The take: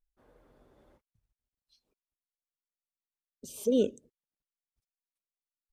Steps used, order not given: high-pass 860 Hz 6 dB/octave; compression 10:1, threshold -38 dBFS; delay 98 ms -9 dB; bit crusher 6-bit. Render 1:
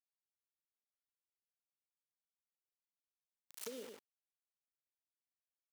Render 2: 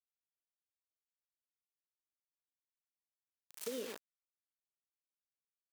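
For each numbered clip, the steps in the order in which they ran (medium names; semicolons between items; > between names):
bit crusher > delay > compression > high-pass; delay > bit crusher > high-pass > compression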